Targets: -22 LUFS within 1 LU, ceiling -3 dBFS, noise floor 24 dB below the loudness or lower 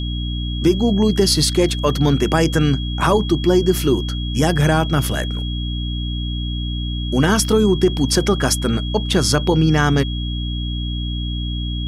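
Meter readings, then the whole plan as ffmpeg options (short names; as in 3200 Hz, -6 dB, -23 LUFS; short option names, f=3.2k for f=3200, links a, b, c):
hum 60 Hz; harmonics up to 300 Hz; hum level -21 dBFS; steady tone 3300 Hz; tone level -30 dBFS; loudness -18.5 LUFS; peak -2.5 dBFS; loudness target -22.0 LUFS
-> -af "bandreject=f=60:t=h:w=4,bandreject=f=120:t=h:w=4,bandreject=f=180:t=h:w=4,bandreject=f=240:t=h:w=4,bandreject=f=300:t=h:w=4"
-af "bandreject=f=3.3k:w=30"
-af "volume=-3.5dB"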